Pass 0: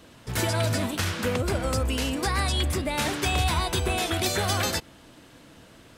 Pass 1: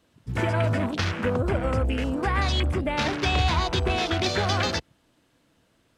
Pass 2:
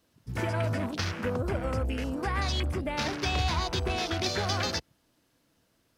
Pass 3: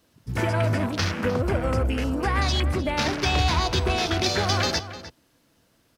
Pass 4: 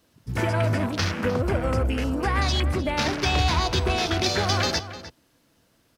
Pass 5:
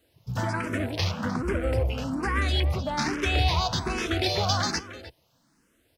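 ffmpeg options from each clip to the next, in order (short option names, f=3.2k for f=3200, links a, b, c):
-filter_complex "[0:a]acrossover=split=9800[a][b];[b]acompressor=threshold=-54dB:ratio=4:attack=1:release=60[c];[a][c]amix=inputs=2:normalize=0,afwtdn=0.0224,volume=2dB"
-af "aexciter=amount=1.9:drive=4.6:freq=4.6k,volume=-5.5dB"
-filter_complex "[0:a]asplit=2[a][b];[b]adelay=303.2,volume=-13dB,highshelf=f=4k:g=-6.82[c];[a][c]amix=inputs=2:normalize=0,volume=6dB"
-af anull
-filter_complex "[0:a]asplit=2[a][b];[b]afreqshift=1.2[c];[a][c]amix=inputs=2:normalize=1"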